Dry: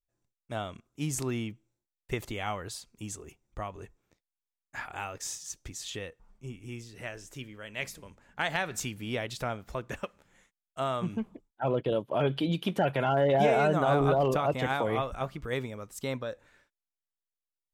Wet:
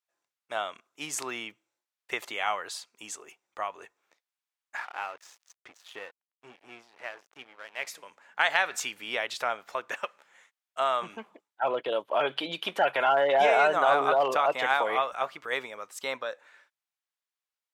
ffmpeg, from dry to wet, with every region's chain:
-filter_complex "[0:a]asettb=1/sr,asplit=3[a][b][c];[a]atrim=end=4.774[d];[b]atrim=start=4.77:end=7.87,asetpts=PTS-STARTPTS,afade=t=in:d=0.004:c=qsin,afade=t=out:st=3.096:d=0.004:c=qsin,lowpass=f=1.5k:p=1,aeval=exprs='sgn(val(0))*max(abs(val(0))-0.00299,0)':c=same[e];[c]atrim=start=7.866[f];[d][e]acrossfade=d=0.004:c1=hsin:c2=qsin[g];[g][f]acrossfade=d=0.004:c1=qsin:c2=hsin,highpass=810,aemphasis=mode=reproduction:type=cd,volume=8dB"

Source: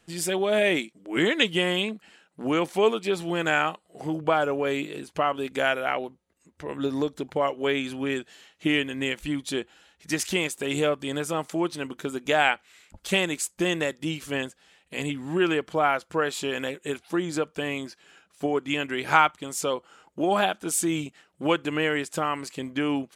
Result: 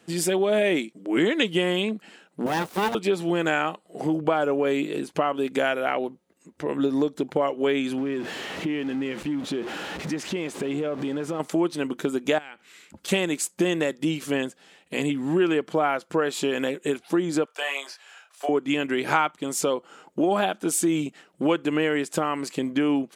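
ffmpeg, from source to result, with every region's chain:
-filter_complex "[0:a]asettb=1/sr,asplit=3[a][b][c];[a]atrim=end=2.464[d];[b]atrim=start=2.46:end=2.95,asetpts=PTS-STARTPTS,afade=t=in:d=0.004:c=qsin,afade=t=out:st=0.486:d=0.004:c=qsin,aeval=exprs='abs(val(0))':c=same,acrusher=bits=6:mode=log:mix=0:aa=0.000001[e];[c]atrim=start=2.946[f];[d][e]acrossfade=d=0.004:c1=hsin:c2=qsin[g];[g][f]acrossfade=d=0.004:c1=qsin:c2=hsin,asettb=1/sr,asplit=3[h][i][j];[h]atrim=end=7.984[k];[i]atrim=start=7.98:end=11.4,asetpts=PTS-STARTPTS,afade=t=in:d=0.004:c=qsin,afade=t=out:st=3.416:d=0.004:c=qsin,aeval=exprs='val(0)+0.5*0.0282*sgn(val(0))':c=same,aemphasis=mode=reproduction:type=75fm,acompressor=threshold=-36dB:ratio=3:attack=3.2:release=140:knee=1:detection=peak[l];[j]atrim=start=11.396[m];[k][l]acrossfade=d=0.004:c1=hsin:c2=qsin[n];[n][m]acrossfade=d=0.004:c1=qsin:c2=hsin,asettb=1/sr,asplit=3[o][p][q];[o]atrim=end=12.384[r];[p]atrim=start=12.38:end=13.08,asetpts=PTS-STARTPTS,afade=t=in:d=0.004:c=qsin,afade=t=out:st=0.696:d=0.004:c=qsin,equalizer=f=690:t=o:w=0.6:g=-6.5,acompressor=threshold=-38dB:ratio=8:attack=3.2:release=140:knee=1:detection=peak[s];[q]atrim=start=13.076[t];[r][s]acrossfade=d=0.004:c1=hsin:c2=qsin[u];[u][t]acrossfade=d=0.004:c1=qsin:c2=hsin,asettb=1/sr,asplit=3[v][w][x];[v]atrim=end=17.454[y];[w]atrim=start=17.45:end=18.49,asetpts=PTS-STARTPTS,afade=t=in:d=0.004:c=qsin,afade=t=out:st=1.036:d=0.004:c=qsin,highpass=f=680:w=0.5412,highpass=f=680:w=1.3066,asplit=2[z][aa];[aa]adelay=29,volume=-4dB[ab];[z][ab]amix=inputs=2:normalize=0,atrim=end_sample=45864[ac];[x]atrim=start=18.486[ad];[y][ac]acrossfade=d=0.004:c1=hsin:c2=qsin[ae];[ae][ad]acrossfade=d=0.004:c1=qsin:c2=hsin,highpass=230,lowshelf=f=410:g=11,acompressor=threshold=-28dB:ratio=2,volume=4dB"

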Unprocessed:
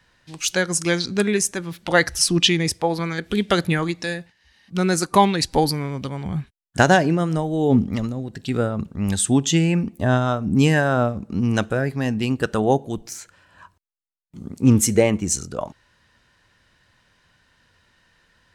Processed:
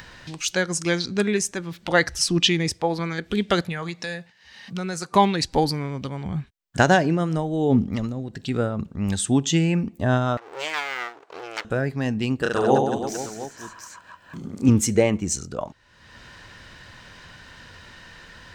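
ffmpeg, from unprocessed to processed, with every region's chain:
-filter_complex "[0:a]asettb=1/sr,asplit=3[a][b][c];[a]atrim=end=3.614[d];[b]atrim=start=3.61:end=5.15,asetpts=PTS-STARTPTS,afade=t=in:d=0.004:c=qsin,afade=t=out:st=1.536:d=0.004:c=qsin,highpass=140,equalizer=f=310:w=4:g=-11,acompressor=threshold=-23dB:ratio=5:attack=3.2:release=140:knee=1:detection=peak[e];[c]atrim=start=5.146[f];[d][e]acrossfade=d=0.004:c1=hsin:c2=qsin[g];[g][f]acrossfade=d=0.004:c1=qsin:c2=hsin,asettb=1/sr,asplit=3[h][i][j];[h]atrim=end=10.374[k];[i]atrim=start=10.37:end=11.65,asetpts=PTS-STARTPTS,afade=t=in:d=0.004:c=qsin,afade=t=out:st=1.276:d=0.004:c=qsin,highshelf=f=8.6k:g=-11,aeval=exprs='abs(val(0))':c=same,highpass=890[l];[j]atrim=start=11.646[m];[k][l]acrossfade=d=0.004:c1=hsin:c2=qsin[n];[n][m]acrossfade=d=0.004:c1=qsin:c2=hsin,asettb=1/sr,asplit=3[o][p][q];[o]atrim=end=12.424[r];[p]atrim=start=12.42:end=14.69,asetpts=PTS-STARTPTS,afade=t=in:d=0.004:c=qsin,afade=t=out:st=2.266:d=0.004:c=qsin,lowshelf=f=130:g=-11,aecho=1:1:30|72|130.8|213.1|328.4|489.7|715.6:0.794|0.631|0.501|0.398|0.316|0.251|0.2,atrim=end_sample=100107[s];[q]atrim=start=14.686[t];[r][s]acrossfade=d=0.004:c1=hsin:c2=qsin[u];[u][t]acrossfade=d=0.004:c1=qsin:c2=hsin,equalizer=f=11k:t=o:w=0.45:g=-10.5,acompressor=mode=upward:threshold=-27dB:ratio=2.5,volume=-2dB"

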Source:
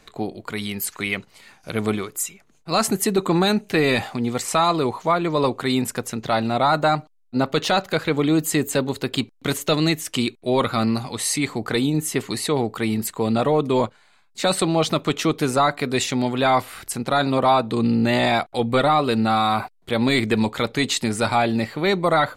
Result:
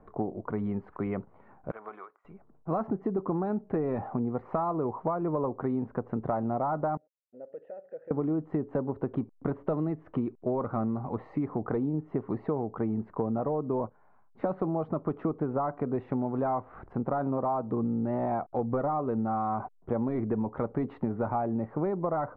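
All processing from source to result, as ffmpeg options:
-filter_complex "[0:a]asettb=1/sr,asplit=3[a][b][c];[a]atrim=end=1.714[d];[b]atrim=start=1.71:end=2.25,asetpts=PTS-STARTPTS,afade=t=in:d=0.004:c=qsin,afade=t=out:st=0.536:d=0.004:c=qsin,highpass=1.3k,acompressor=threshold=-29dB:ratio=10:attack=3.2:release=140:knee=1:detection=peak[e];[c]atrim=start=2.246[f];[d][e]acrossfade=d=0.004:c1=hsin:c2=qsin[g];[g][f]acrossfade=d=0.004:c1=qsin:c2=hsin,asettb=1/sr,asplit=3[h][i][j];[h]atrim=end=6.974[k];[i]atrim=start=6.97:end=8.11,asetpts=PTS-STARTPTS,afade=t=in:d=0.004:c=qsin,afade=t=out:st=1.136:d=0.004:c=qsin,acompressor=threshold=-34dB:ratio=2.5:attack=3.2:release=140:knee=1:detection=peak,asplit=3[l][m][n];[l]bandpass=f=530:t=q:w=8,volume=0dB[o];[m]bandpass=f=1.84k:t=q:w=8,volume=-6dB[p];[n]bandpass=f=2.48k:t=q:w=8,volume=-9dB[q];[o][p][q]amix=inputs=3:normalize=0[r];[j]atrim=start=8.106[s];[k][r]acrossfade=d=0.004:c1=hsin:c2=qsin[t];[t][s]acrossfade=d=0.004:c1=qsin:c2=hsin,lowpass=f=1.1k:w=0.5412,lowpass=f=1.1k:w=1.3066,acompressor=threshold=-26dB:ratio=10"

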